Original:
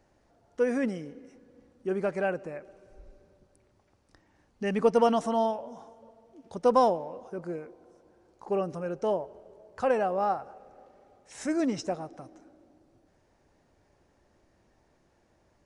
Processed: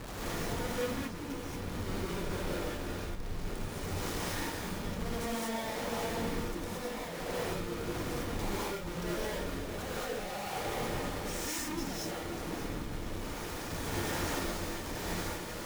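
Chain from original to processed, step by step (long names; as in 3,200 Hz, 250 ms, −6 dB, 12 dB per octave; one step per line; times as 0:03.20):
spike at every zero crossing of −26 dBFS
inverse Chebyshev band-stop filter 140–1,700 Hz, stop band 50 dB
noise gate −39 dBFS, range −7 dB
parametric band 620 Hz −6 dB 2.3 octaves
harmonic and percussive parts rebalanced harmonic +6 dB
parametric band 84 Hz +11.5 dB 2 octaves
comparator with hysteresis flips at −33 dBFS
sample-and-hold tremolo
reverb whose tail is shaped and stops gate 250 ms rising, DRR −7 dB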